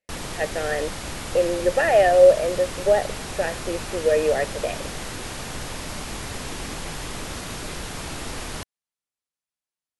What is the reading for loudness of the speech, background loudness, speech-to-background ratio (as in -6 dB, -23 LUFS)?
-21.0 LUFS, -32.5 LUFS, 11.5 dB